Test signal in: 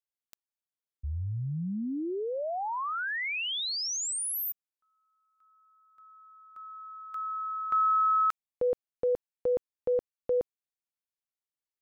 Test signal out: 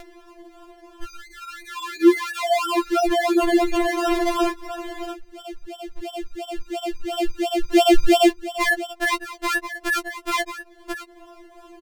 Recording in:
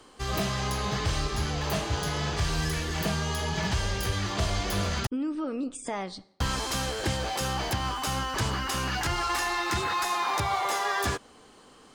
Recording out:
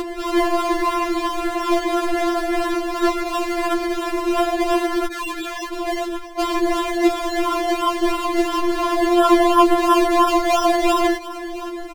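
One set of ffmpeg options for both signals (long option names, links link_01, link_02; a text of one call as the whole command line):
ffmpeg -i in.wav -af "aecho=1:1:619:0.0668,acrusher=samples=28:mix=1:aa=0.000001:lfo=1:lforange=16.8:lforate=2.9,equalizer=frequency=130:width_type=o:width=1.3:gain=12,bandreject=frequency=50:width_type=h:width=6,bandreject=frequency=100:width_type=h:width=6,bandreject=frequency=150:width_type=h:width=6,acompressor=mode=upward:threshold=-34dB:ratio=2.5:attack=39:release=25:knee=2.83:detection=peak,aemphasis=mode=reproduction:type=cd,alimiter=level_in=12dB:limit=-1dB:release=50:level=0:latency=1,afftfilt=real='re*4*eq(mod(b,16),0)':imag='im*4*eq(mod(b,16),0)':win_size=2048:overlap=0.75,volume=1.5dB" out.wav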